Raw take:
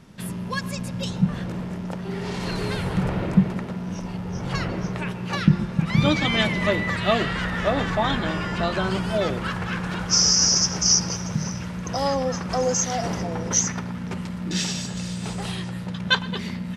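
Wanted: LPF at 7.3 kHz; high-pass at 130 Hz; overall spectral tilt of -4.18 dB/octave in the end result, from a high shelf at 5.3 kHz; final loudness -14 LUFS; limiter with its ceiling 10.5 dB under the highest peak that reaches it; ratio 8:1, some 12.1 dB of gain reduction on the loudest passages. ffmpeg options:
-af "highpass=130,lowpass=7300,highshelf=f=5300:g=4.5,acompressor=threshold=0.0631:ratio=8,volume=7.94,alimiter=limit=0.531:level=0:latency=1"

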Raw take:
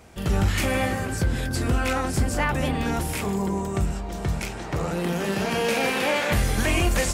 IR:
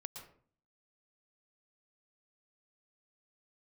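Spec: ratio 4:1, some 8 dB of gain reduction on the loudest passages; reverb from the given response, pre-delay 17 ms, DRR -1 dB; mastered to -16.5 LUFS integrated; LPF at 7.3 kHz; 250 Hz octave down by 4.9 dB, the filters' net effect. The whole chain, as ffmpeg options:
-filter_complex "[0:a]lowpass=7300,equalizer=f=250:t=o:g=-7,acompressor=threshold=0.0398:ratio=4,asplit=2[s0][s1];[1:a]atrim=start_sample=2205,adelay=17[s2];[s1][s2]afir=irnorm=-1:irlink=0,volume=1.68[s3];[s0][s3]amix=inputs=2:normalize=0,volume=3.55"

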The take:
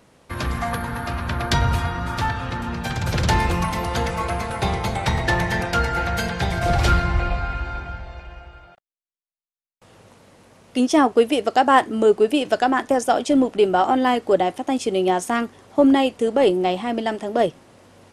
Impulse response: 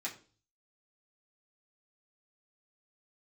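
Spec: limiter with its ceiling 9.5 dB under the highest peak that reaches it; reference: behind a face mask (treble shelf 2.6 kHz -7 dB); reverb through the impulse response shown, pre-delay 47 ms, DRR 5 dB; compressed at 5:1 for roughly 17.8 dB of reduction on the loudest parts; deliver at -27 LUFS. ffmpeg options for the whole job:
-filter_complex "[0:a]acompressor=threshold=0.0251:ratio=5,alimiter=level_in=1.5:limit=0.0631:level=0:latency=1,volume=0.668,asplit=2[s0][s1];[1:a]atrim=start_sample=2205,adelay=47[s2];[s1][s2]afir=irnorm=-1:irlink=0,volume=0.473[s3];[s0][s3]amix=inputs=2:normalize=0,highshelf=f=2600:g=-7,volume=3.16"

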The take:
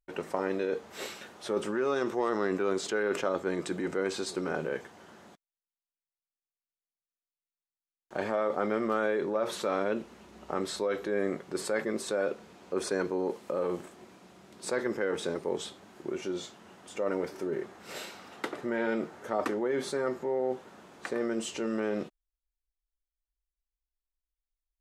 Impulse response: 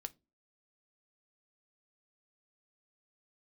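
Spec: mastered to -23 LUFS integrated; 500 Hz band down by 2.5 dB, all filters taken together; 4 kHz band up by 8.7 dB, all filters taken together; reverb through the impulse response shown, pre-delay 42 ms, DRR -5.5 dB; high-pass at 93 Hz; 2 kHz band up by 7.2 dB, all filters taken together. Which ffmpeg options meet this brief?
-filter_complex "[0:a]highpass=93,equalizer=f=500:t=o:g=-3.5,equalizer=f=2000:t=o:g=8.5,equalizer=f=4000:t=o:g=8,asplit=2[s0][s1];[1:a]atrim=start_sample=2205,adelay=42[s2];[s1][s2]afir=irnorm=-1:irlink=0,volume=2.82[s3];[s0][s3]amix=inputs=2:normalize=0,volume=1.26"

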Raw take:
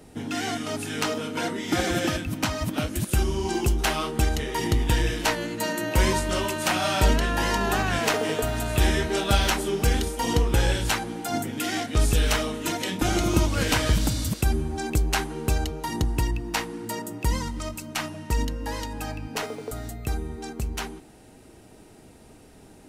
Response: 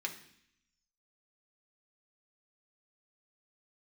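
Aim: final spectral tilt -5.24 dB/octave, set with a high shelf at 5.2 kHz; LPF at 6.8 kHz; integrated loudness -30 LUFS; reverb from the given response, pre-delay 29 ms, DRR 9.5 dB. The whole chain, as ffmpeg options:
-filter_complex "[0:a]lowpass=6800,highshelf=f=5200:g=-5.5,asplit=2[s0][s1];[1:a]atrim=start_sample=2205,adelay=29[s2];[s1][s2]afir=irnorm=-1:irlink=0,volume=0.282[s3];[s0][s3]amix=inputs=2:normalize=0,volume=0.668"

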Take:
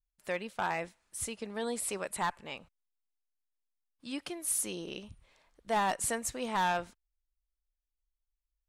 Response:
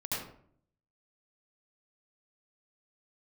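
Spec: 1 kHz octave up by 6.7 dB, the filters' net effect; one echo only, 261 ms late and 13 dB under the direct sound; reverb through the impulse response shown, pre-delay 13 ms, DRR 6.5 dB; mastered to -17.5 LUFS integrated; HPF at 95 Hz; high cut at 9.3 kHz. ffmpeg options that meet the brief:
-filter_complex "[0:a]highpass=95,lowpass=9300,equalizer=f=1000:t=o:g=8,aecho=1:1:261:0.224,asplit=2[s0][s1];[1:a]atrim=start_sample=2205,adelay=13[s2];[s1][s2]afir=irnorm=-1:irlink=0,volume=0.282[s3];[s0][s3]amix=inputs=2:normalize=0,volume=4.22"

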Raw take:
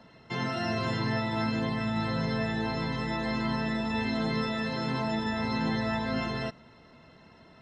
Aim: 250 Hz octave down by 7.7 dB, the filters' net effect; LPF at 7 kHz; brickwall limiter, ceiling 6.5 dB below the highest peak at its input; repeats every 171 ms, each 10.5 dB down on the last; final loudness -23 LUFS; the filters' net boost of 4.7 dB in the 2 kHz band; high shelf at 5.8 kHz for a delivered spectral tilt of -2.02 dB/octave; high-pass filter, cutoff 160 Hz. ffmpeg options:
-af "highpass=160,lowpass=7000,equalizer=f=250:t=o:g=-8,equalizer=f=2000:t=o:g=5,highshelf=f=5800:g=5.5,alimiter=level_in=1.19:limit=0.0631:level=0:latency=1,volume=0.841,aecho=1:1:171|342|513:0.299|0.0896|0.0269,volume=3.35"

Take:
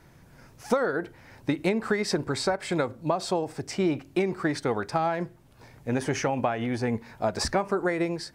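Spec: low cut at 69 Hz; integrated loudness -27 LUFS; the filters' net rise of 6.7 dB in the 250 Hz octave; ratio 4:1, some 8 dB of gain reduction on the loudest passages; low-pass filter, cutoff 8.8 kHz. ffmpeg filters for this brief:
-af "highpass=69,lowpass=8800,equalizer=f=250:t=o:g=9,acompressor=threshold=0.0631:ratio=4,volume=1.33"

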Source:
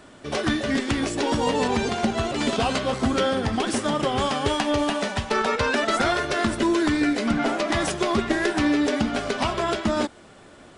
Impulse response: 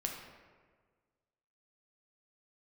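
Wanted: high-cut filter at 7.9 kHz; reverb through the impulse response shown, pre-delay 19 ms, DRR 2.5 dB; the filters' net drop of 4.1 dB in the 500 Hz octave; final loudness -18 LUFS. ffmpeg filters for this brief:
-filter_complex "[0:a]lowpass=7900,equalizer=f=500:t=o:g=-5.5,asplit=2[s0][s1];[1:a]atrim=start_sample=2205,adelay=19[s2];[s1][s2]afir=irnorm=-1:irlink=0,volume=0.631[s3];[s0][s3]amix=inputs=2:normalize=0,volume=1.88"

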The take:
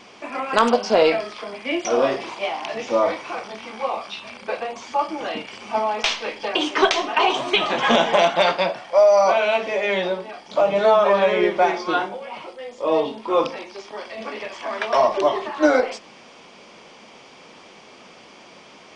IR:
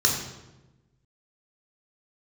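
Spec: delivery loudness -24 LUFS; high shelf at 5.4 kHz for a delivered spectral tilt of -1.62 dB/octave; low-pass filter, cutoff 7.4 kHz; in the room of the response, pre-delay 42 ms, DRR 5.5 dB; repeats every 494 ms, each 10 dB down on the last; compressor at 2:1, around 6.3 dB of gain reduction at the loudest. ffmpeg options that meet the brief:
-filter_complex "[0:a]lowpass=7400,highshelf=f=5400:g=-5.5,acompressor=threshold=0.0708:ratio=2,aecho=1:1:494|988|1482|1976:0.316|0.101|0.0324|0.0104,asplit=2[s0][s1];[1:a]atrim=start_sample=2205,adelay=42[s2];[s1][s2]afir=irnorm=-1:irlink=0,volume=0.112[s3];[s0][s3]amix=inputs=2:normalize=0,volume=1.06"

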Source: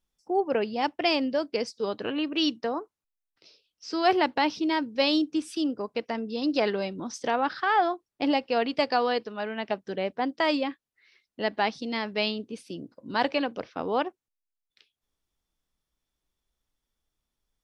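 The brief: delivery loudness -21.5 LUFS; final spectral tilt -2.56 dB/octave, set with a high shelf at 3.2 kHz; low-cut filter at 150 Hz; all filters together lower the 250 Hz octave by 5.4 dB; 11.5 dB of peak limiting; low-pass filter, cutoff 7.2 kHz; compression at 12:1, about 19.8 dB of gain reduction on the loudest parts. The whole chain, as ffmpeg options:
-af "highpass=150,lowpass=7200,equalizer=f=250:t=o:g=-6.5,highshelf=f=3200:g=-7.5,acompressor=threshold=0.01:ratio=12,volume=20,alimiter=limit=0.316:level=0:latency=1"

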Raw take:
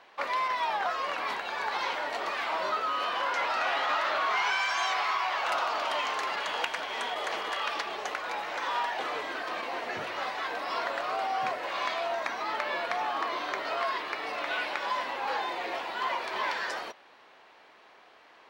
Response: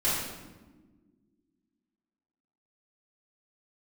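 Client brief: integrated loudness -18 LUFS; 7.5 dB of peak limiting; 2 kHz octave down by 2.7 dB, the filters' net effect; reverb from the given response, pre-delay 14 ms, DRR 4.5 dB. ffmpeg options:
-filter_complex "[0:a]equalizer=f=2000:t=o:g=-3.5,alimiter=level_in=1.06:limit=0.0631:level=0:latency=1,volume=0.944,asplit=2[s0][s1];[1:a]atrim=start_sample=2205,adelay=14[s2];[s1][s2]afir=irnorm=-1:irlink=0,volume=0.168[s3];[s0][s3]amix=inputs=2:normalize=0,volume=5.01"

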